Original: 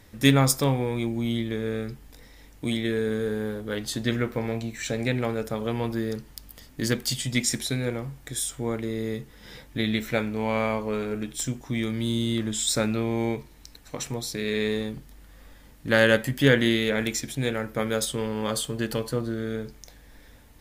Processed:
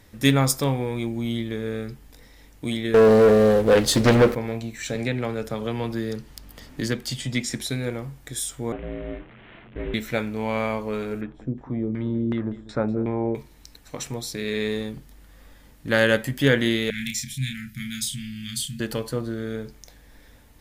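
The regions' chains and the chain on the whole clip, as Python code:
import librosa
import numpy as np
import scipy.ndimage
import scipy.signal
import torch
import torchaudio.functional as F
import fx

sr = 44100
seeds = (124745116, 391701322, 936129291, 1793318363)

y = fx.chain(x, sr, fx.peak_eq(hz=500.0, db=11.0, octaves=0.42),
    fx.leveller(passes=3),
    fx.doppler_dist(depth_ms=0.47), at=(2.94, 4.35))
y = fx.chain(y, sr, fx.high_shelf(hz=7500.0, db=-8.5),
    fx.band_squash(depth_pct=40), at=(4.95, 7.61))
y = fx.chain(y, sr, fx.delta_mod(bps=16000, step_db=-38.5),
    fx.ring_mod(carrier_hz=170.0), at=(8.72, 9.94))
y = fx.chain(y, sr, fx.filter_lfo_lowpass(shape='saw_down', hz=2.7, low_hz=290.0, high_hz=1900.0, q=1.4),
    fx.echo_single(ms=194, db=-17.0), at=(11.21, 13.35))
y = fx.chain(y, sr, fx.cheby2_bandstop(low_hz=430.0, high_hz=940.0, order=4, stop_db=60),
    fx.doubler(ms=31.0, db=-4.0), at=(16.9, 18.8))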